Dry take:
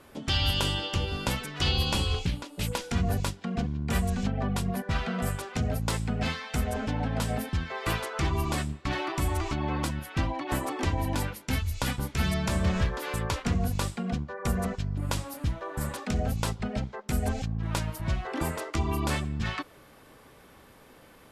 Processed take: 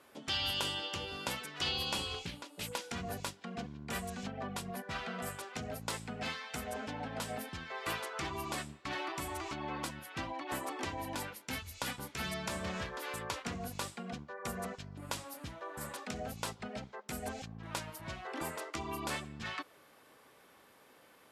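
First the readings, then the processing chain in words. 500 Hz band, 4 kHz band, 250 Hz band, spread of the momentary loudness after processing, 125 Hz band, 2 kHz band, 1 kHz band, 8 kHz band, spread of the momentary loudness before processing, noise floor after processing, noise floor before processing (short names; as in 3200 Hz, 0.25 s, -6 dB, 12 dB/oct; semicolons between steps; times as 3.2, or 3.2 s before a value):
-8.0 dB, -5.5 dB, -12.0 dB, 8 LU, -17.5 dB, -5.5 dB, -6.5 dB, -5.5 dB, 5 LU, -62 dBFS, -54 dBFS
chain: HPF 420 Hz 6 dB/oct; gain -5.5 dB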